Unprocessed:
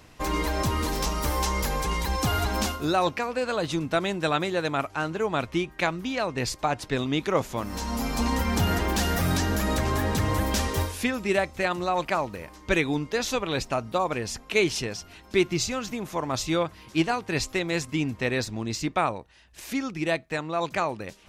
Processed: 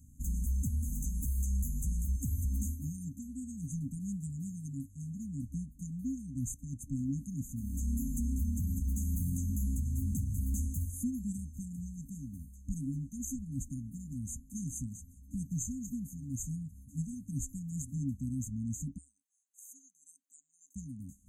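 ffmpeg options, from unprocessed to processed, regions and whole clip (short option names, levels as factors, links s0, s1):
-filter_complex "[0:a]asettb=1/sr,asplit=3[s0][s1][s2];[s0]atrim=end=18.984[s3];[s1]atrim=start=18.98:end=20.76,asetpts=PTS-STARTPTS,afade=t=in:d=0.004:c=qsin,afade=t=out:st=1.776:d=0.004:c=qsin,highpass=f=730:w=0.5412,highpass=f=730:w=1.3066,equalizer=f=13000:t=o:w=1:g=-6[s4];[s2]atrim=start=20.756[s5];[s3][s4]acrossfade=d=0.004:c1=hsin:c2=qsin[s6];[s6][s5]acrossfade=d=0.004:c1=qsin:c2=hsin,afftfilt=real='re*(1-between(b*sr/4096,280,6200))':imag='im*(1-between(b*sr/4096,280,6200))':win_size=4096:overlap=0.75,equalizer=f=70:w=4.4:g=9,alimiter=limit=0.0841:level=0:latency=1:release=170,volume=0.631"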